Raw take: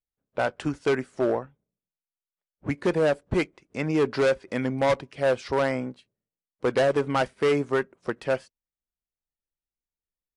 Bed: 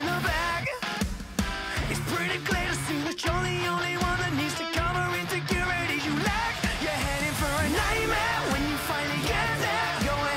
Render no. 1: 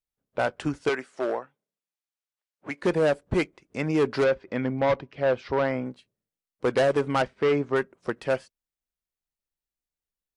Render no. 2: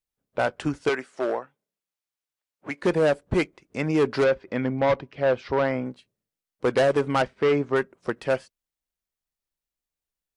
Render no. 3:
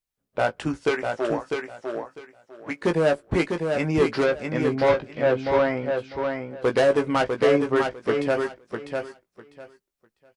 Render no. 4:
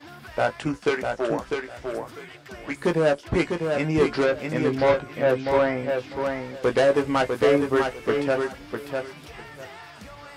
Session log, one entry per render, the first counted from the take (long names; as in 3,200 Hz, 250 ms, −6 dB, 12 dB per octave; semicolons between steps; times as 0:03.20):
0:00.89–0:02.83: meter weighting curve A; 0:04.24–0:05.86: high-frequency loss of the air 180 metres; 0:07.22–0:07.76: high-frequency loss of the air 130 metres
level +1.5 dB
double-tracking delay 18 ms −7 dB; repeating echo 650 ms, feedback 19%, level −5 dB
mix in bed −16 dB